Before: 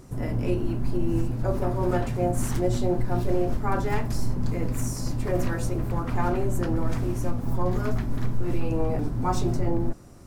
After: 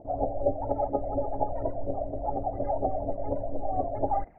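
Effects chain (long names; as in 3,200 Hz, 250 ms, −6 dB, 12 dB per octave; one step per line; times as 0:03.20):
formants moved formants −4 semitones
phase shifter 1.8 Hz, delay 3.8 ms, feedback 63%
formant resonators in series u
low-pass filter sweep 260 Hz → 1,100 Hz, 0:09.40–0:10.12
wrong playback speed 33 rpm record played at 78 rpm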